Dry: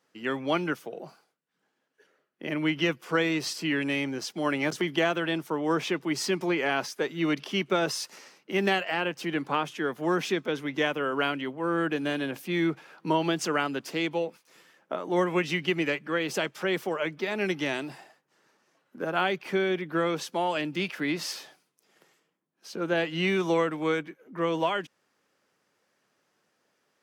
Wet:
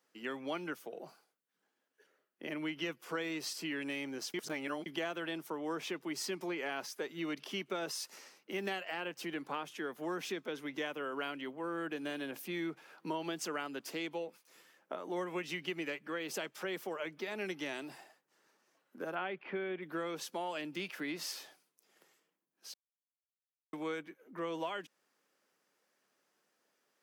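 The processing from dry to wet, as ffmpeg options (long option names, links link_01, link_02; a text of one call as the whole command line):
ffmpeg -i in.wav -filter_complex "[0:a]asplit=3[link_01][link_02][link_03];[link_01]afade=type=out:start_time=19.14:duration=0.02[link_04];[link_02]lowpass=frequency=2900:width=0.5412,lowpass=frequency=2900:width=1.3066,afade=type=in:start_time=19.14:duration=0.02,afade=type=out:start_time=19.81:duration=0.02[link_05];[link_03]afade=type=in:start_time=19.81:duration=0.02[link_06];[link_04][link_05][link_06]amix=inputs=3:normalize=0,asplit=5[link_07][link_08][link_09][link_10][link_11];[link_07]atrim=end=4.342[link_12];[link_08]atrim=start=4.338:end=4.862,asetpts=PTS-STARTPTS,areverse[link_13];[link_09]atrim=start=4.858:end=22.74,asetpts=PTS-STARTPTS,afade=type=out:start_time=17.878:duration=0.004:curve=hsin[link_14];[link_10]atrim=start=22.74:end=23.73,asetpts=PTS-STARTPTS,volume=0[link_15];[link_11]atrim=start=23.73,asetpts=PTS-STARTPTS,afade=type=in:duration=0.004:curve=hsin[link_16];[link_12][link_13]acrossfade=duration=0.004:curve1=hsin:curve2=hsin[link_17];[link_14][link_15][link_16]concat=n=3:v=0:a=1[link_18];[link_17][link_18]acrossfade=duration=0.004:curve1=hsin:curve2=hsin,highpass=200,highshelf=frequency=9800:gain=9,acompressor=threshold=-33dB:ratio=2,volume=-6dB" out.wav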